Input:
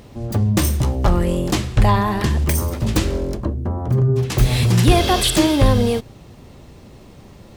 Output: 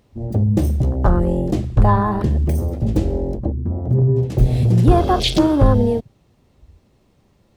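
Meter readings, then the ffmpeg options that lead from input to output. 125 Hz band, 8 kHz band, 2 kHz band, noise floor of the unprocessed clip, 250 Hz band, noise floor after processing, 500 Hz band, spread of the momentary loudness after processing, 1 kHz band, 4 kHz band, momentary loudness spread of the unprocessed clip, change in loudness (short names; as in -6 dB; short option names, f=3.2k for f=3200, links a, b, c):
+1.0 dB, -13.0 dB, -7.5 dB, -43 dBFS, +1.0 dB, -59 dBFS, +1.0 dB, 9 LU, +0.5 dB, -4.5 dB, 9 LU, +0.5 dB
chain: -af "afwtdn=0.0794,volume=1dB"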